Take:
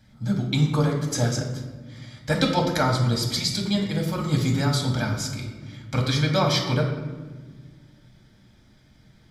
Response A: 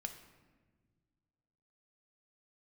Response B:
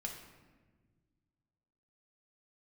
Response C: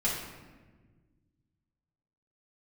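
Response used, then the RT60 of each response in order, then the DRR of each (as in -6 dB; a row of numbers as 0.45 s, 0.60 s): B; no single decay rate, 1.4 s, 1.4 s; 5.5 dB, 0.0 dB, -7.5 dB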